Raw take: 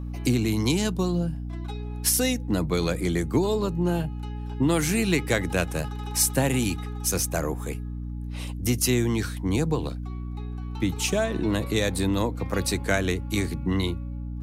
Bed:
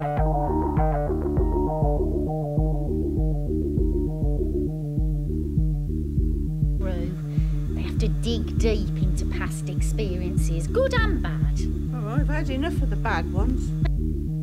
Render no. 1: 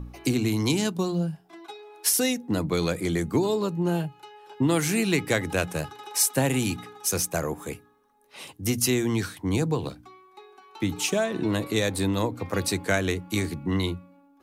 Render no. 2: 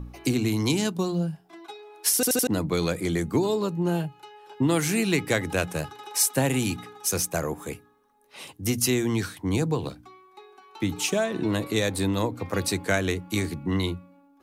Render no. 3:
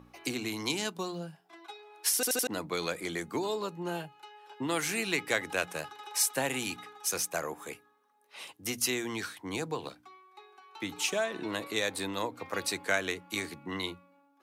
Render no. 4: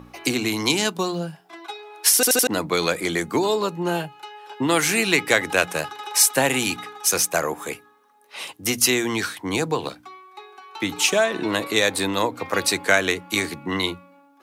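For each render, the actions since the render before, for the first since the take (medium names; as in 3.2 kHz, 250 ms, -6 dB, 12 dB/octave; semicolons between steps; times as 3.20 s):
de-hum 60 Hz, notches 5
2.15 s: stutter in place 0.08 s, 4 plays
high-pass 1 kHz 6 dB/octave; treble shelf 4.4 kHz -6.5 dB
trim +11.5 dB; peak limiter -3 dBFS, peak gain reduction 1 dB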